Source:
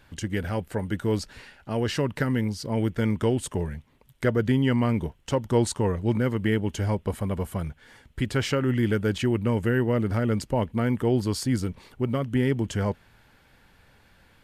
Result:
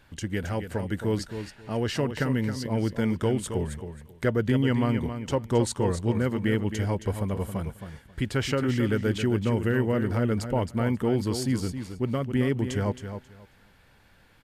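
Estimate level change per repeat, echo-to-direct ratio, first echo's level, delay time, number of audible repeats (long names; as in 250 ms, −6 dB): −14.5 dB, −9.0 dB, −9.0 dB, 269 ms, 2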